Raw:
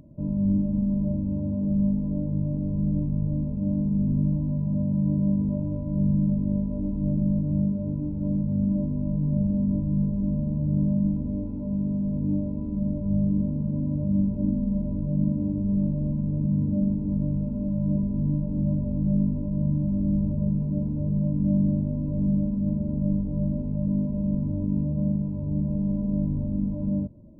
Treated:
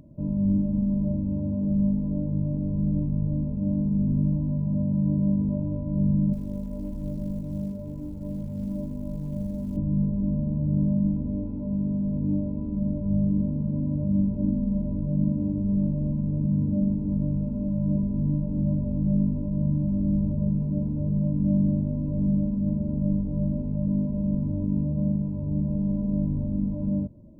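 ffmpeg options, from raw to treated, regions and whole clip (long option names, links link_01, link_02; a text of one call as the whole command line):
ffmpeg -i in.wav -filter_complex "[0:a]asettb=1/sr,asplit=3[link_01][link_02][link_03];[link_01]atrim=end=6.334[link_04];[link_02]atrim=start=6.33:end=9.77,asetpts=PTS-STARTPTS,afade=type=in:duration=0.004:curve=qsin,afade=type=out:start_time=3.436:duration=0.004:curve=qsin,equalizer=frequency=170:width_type=o:width=2.5:gain=-7.5,asplit=2[link_05][link_06];[link_06]adelay=117,lowpass=frequency=810:poles=1,volume=-12.5dB,asplit=2[link_07][link_08];[link_08]adelay=117,lowpass=frequency=810:poles=1,volume=0.32,asplit=2[link_09][link_10];[link_10]adelay=117,lowpass=frequency=810:poles=1,volume=0.32[link_11];[link_05][link_07][link_09][link_11]amix=inputs=4:normalize=0,atrim=end_sample=151704,acrusher=bits=9:mode=log:mix=0:aa=0.000001[link_12];[link_03]atrim=start=9.766[link_13];[link_04][link_12]acrossfade=duration=0.004:curve1=hsin:curve2=qsin[link_14];[link_14][link_13]acrossfade=duration=0.004:curve1=qsin:curve2=hsin" out.wav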